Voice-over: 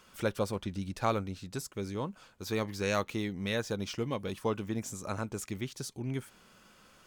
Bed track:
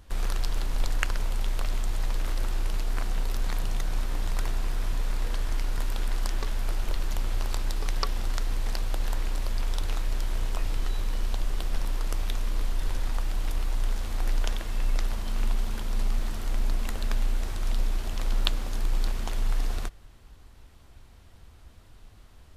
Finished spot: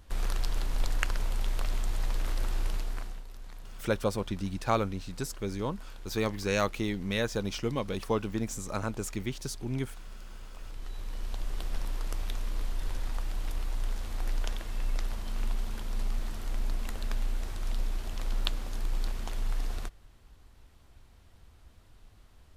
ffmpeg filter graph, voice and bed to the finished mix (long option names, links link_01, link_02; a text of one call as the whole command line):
ffmpeg -i stem1.wav -i stem2.wav -filter_complex "[0:a]adelay=3650,volume=2.5dB[link_01];[1:a]volume=10dB,afade=type=out:start_time=2.67:duration=0.56:silence=0.177828,afade=type=in:start_time=10.55:duration=1.08:silence=0.237137[link_02];[link_01][link_02]amix=inputs=2:normalize=0" out.wav